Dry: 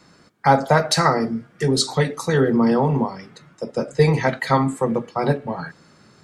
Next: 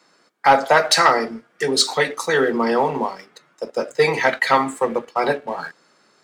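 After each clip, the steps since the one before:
high-pass filter 390 Hz 12 dB per octave
leveller curve on the samples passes 1
dynamic equaliser 2,300 Hz, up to +5 dB, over −30 dBFS, Q 0.8
level −1 dB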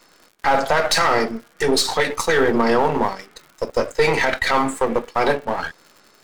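gain on one half-wave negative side −7 dB
brickwall limiter −12.5 dBFS, peak gain reduction 10.5 dB
surface crackle 110 per second −42 dBFS
level +6 dB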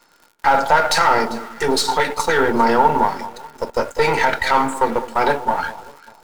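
delay that swaps between a low-pass and a high-pass 198 ms, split 1,100 Hz, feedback 54%, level −13.5 dB
in parallel at −5.5 dB: bit-depth reduction 6 bits, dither none
on the sum: hollow resonant body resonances 900/1,400 Hz, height 12 dB, ringing for 45 ms
level −4.5 dB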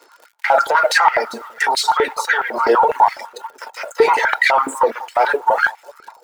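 reverb reduction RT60 1 s
boost into a limiter +12.5 dB
high-pass on a step sequencer 12 Hz 400–2,100 Hz
level −9 dB

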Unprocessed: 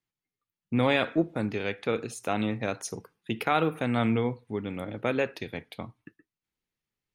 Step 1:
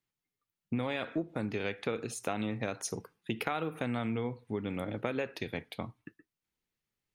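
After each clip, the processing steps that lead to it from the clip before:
downward compressor 12 to 1, threshold −29 dBFS, peak gain reduction 11 dB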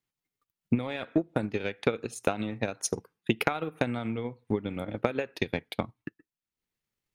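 transient designer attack +10 dB, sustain −7 dB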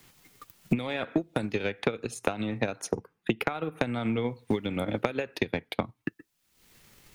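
multiband upward and downward compressor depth 100%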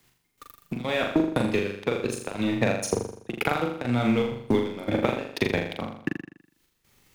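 gate pattern "x...xxx..xxxx.xx" 160 BPM −12 dB
leveller curve on the samples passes 2
flutter between parallel walls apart 7 metres, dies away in 0.63 s
level −3 dB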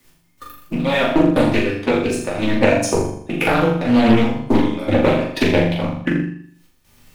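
spectral magnitudes quantised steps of 15 dB
rectangular room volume 160 cubic metres, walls furnished, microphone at 2.5 metres
highs frequency-modulated by the lows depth 0.33 ms
level +4 dB

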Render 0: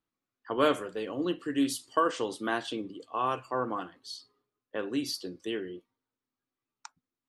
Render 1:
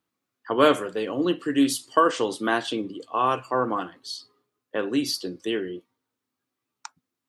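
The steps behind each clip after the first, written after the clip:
high-pass filter 86 Hz
level +7 dB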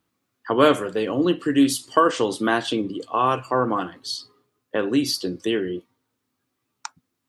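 low-shelf EQ 140 Hz +8.5 dB
in parallel at −0.5 dB: downward compressor, threshold −30 dBFS, peak gain reduction 17.5 dB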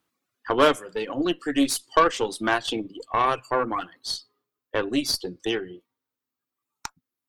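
low-shelf EQ 280 Hz −8.5 dB
reverb reduction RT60 1.7 s
harmonic generator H 6 −21 dB, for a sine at −4.5 dBFS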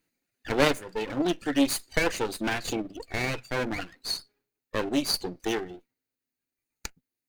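lower of the sound and its delayed copy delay 0.46 ms

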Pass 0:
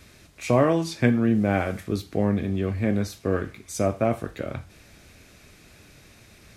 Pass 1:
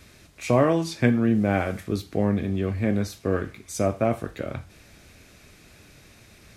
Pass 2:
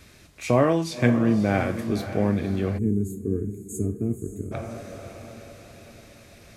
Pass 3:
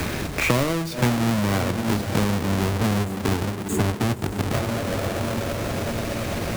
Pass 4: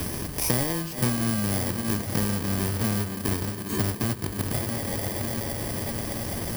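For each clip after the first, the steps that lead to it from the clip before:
no processing that can be heard
feedback delay with all-pass diffusion 547 ms, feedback 48%, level −11 dB; gain on a spectral selection 0:02.78–0:04.52, 460–6,400 Hz −28 dB
each half-wave held at its own peak; multiband upward and downward compressor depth 100%; level −2.5 dB
samples in bit-reversed order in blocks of 32 samples; level −4 dB

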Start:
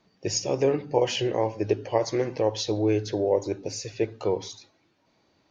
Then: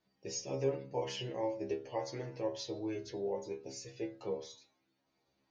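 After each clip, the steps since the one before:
stiff-string resonator 65 Hz, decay 0.41 s, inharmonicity 0.002
level −3.5 dB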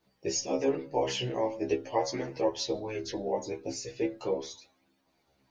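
harmonic and percussive parts rebalanced percussive +9 dB
multi-voice chorus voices 2, 0.41 Hz, delay 15 ms, depth 4 ms
level +6.5 dB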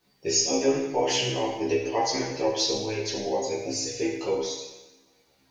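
high-shelf EQ 2,100 Hz +7.5 dB
coupled-rooms reverb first 0.97 s, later 2.6 s, from −27 dB, DRR −1 dB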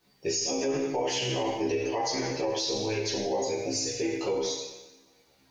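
brickwall limiter −21.5 dBFS, peak gain reduction 11.5 dB
level +1 dB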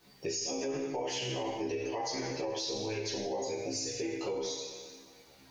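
downward compressor 2 to 1, threshold −48 dBFS, peak gain reduction 12.5 dB
level +5.5 dB

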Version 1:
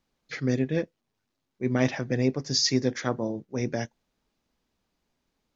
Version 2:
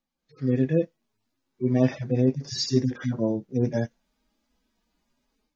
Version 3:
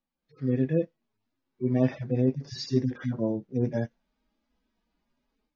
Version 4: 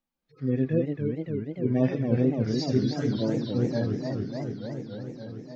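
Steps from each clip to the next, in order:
harmonic-percussive split with one part muted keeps harmonic; automatic gain control gain up to 12 dB; level −5.5 dB
high-frequency loss of the air 140 metres; level −2.5 dB
feedback echo with a swinging delay time 290 ms, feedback 78%, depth 218 cents, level −5 dB

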